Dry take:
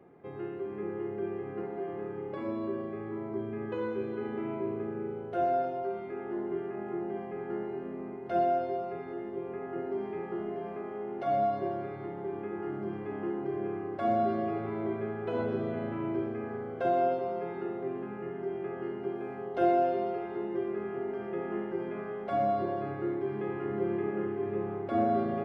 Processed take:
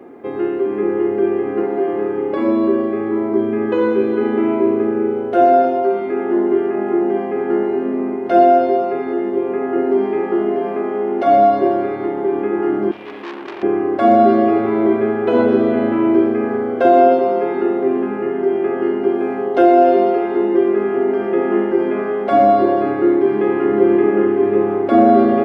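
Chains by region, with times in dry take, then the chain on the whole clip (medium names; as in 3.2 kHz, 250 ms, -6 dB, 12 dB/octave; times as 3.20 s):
12.91–13.63 s: resonant high shelf 1.8 kHz +12.5 dB, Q 1.5 + feedback comb 85 Hz, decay 0.56 s, mix 70% + transformer saturation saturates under 2.1 kHz
whole clip: resonant low shelf 200 Hz -7 dB, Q 3; loudness maximiser +17 dB; trim -1 dB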